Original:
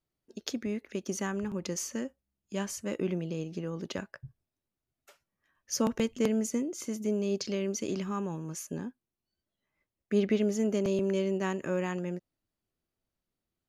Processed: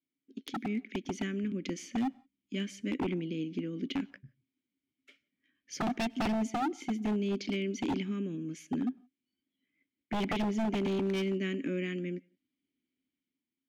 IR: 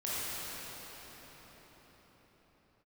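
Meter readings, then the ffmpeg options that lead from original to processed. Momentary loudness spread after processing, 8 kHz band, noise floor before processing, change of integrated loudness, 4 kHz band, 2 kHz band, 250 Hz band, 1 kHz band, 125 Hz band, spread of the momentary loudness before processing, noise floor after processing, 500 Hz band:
8 LU, -11.0 dB, under -85 dBFS, -2.0 dB, 0.0 dB, +1.0 dB, -0.5 dB, +3.5 dB, -1.5 dB, 11 LU, under -85 dBFS, -5.0 dB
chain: -filter_complex "[0:a]asplit=3[s0][s1][s2];[s0]bandpass=f=270:t=q:w=8,volume=1[s3];[s1]bandpass=f=2290:t=q:w=8,volume=0.501[s4];[s2]bandpass=f=3010:t=q:w=8,volume=0.355[s5];[s3][s4][s5]amix=inputs=3:normalize=0,aeval=exprs='0.0106*(abs(mod(val(0)/0.0106+3,4)-2)-1)':c=same,dynaudnorm=f=110:g=11:m=2,asplit=2[s6][s7];[1:a]atrim=start_sample=2205,afade=t=out:st=0.13:d=0.01,atrim=end_sample=6174,adelay=100[s8];[s7][s8]afir=irnorm=-1:irlink=0,volume=0.0447[s9];[s6][s9]amix=inputs=2:normalize=0,volume=2.51"

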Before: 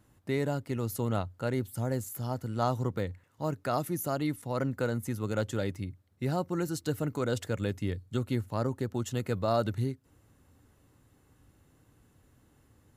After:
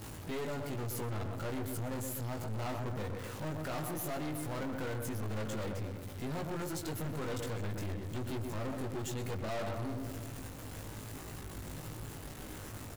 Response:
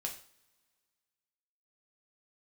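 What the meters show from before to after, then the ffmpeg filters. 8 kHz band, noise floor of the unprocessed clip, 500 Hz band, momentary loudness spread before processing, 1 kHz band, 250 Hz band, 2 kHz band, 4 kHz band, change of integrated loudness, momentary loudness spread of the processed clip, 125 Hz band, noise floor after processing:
-0.5 dB, -66 dBFS, -7.0 dB, 5 LU, -6.0 dB, -6.5 dB, -3.0 dB, -2.5 dB, -7.0 dB, 7 LU, -5.5 dB, -46 dBFS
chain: -filter_complex "[0:a]aeval=exprs='val(0)+0.5*0.0133*sgn(val(0))':c=same,asplit=2[s0][s1];[s1]adelay=19,volume=0.708[s2];[s0][s2]amix=inputs=2:normalize=0,asplit=2[s3][s4];[s4]adelay=125,lowpass=f=2000:p=1,volume=0.447,asplit=2[s5][s6];[s6]adelay=125,lowpass=f=2000:p=1,volume=0.54,asplit=2[s7][s8];[s8]adelay=125,lowpass=f=2000:p=1,volume=0.54,asplit=2[s9][s10];[s10]adelay=125,lowpass=f=2000:p=1,volume=0.54,asplit=2[s11][s12];[s12]adelay=125,lowpass=f=2000:p=1,volume=0.54,asplit=2[s13][s14];[s14]adelay=125,lowpass=f=2000:p=1,volume=0.54,asplit=2[s15][s16];[s16]adelay=125,lowpass=f=2000:p=1,volume=0.54[s17];[s3][s5][s7][s9][s11][s13][s15][s17]amix=inputs=8:normalize=0,aeval=exprs='(tanh(44.7*val(0)+0.45)-tanh(0.45))/44.7':c=same,volume=0.75"

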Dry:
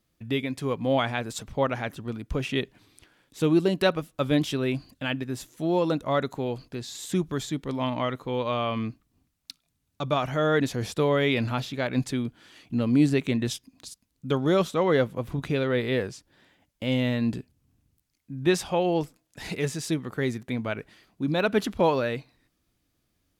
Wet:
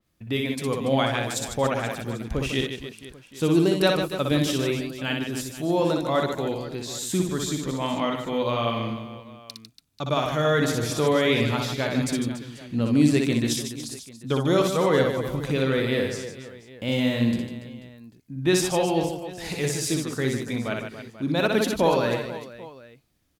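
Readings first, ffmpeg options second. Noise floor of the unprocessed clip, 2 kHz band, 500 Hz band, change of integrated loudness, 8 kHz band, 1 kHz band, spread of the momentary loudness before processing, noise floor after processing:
-75 dBFS, +2.5 dB, +2.0 dB, +2.5 dB, +8.5 dB, +2.0 dB, 12 LU, -52 dBFS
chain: -filter_complex "[0:a]asplit=2[s0][s1];[s1]aecho=0:1:60|150|285|487.5|791.2:0.631|0.398|0.251|0.158|0.1[s2];[s0][s2]amix=inputs=2:normalize=0,adynamicequalizer=threshold=0.00708:dfrequency=4000:dqfactor=0.7:tfrequency=4000:tqfactor=0.7:attack=5:release=100:ratio=0.375:range=3.5:mode=boostabove:tftype=highshelf"

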